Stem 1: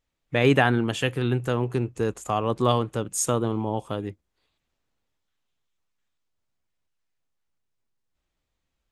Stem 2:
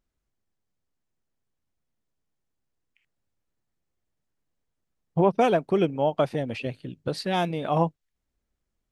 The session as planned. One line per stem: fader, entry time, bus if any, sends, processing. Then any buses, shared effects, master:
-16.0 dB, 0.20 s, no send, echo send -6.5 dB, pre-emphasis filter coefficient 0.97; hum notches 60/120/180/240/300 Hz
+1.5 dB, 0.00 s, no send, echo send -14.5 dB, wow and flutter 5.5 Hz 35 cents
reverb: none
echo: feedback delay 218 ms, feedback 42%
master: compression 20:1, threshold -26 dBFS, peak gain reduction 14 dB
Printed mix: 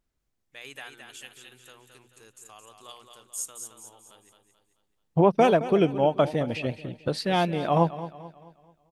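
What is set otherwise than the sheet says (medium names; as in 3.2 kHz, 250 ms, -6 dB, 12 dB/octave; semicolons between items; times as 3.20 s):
stem 1 -16.0 dB -> -7.0 dB; master: missing compression 20:1, threshold -26 dBFS, peak gain reduction 14 dB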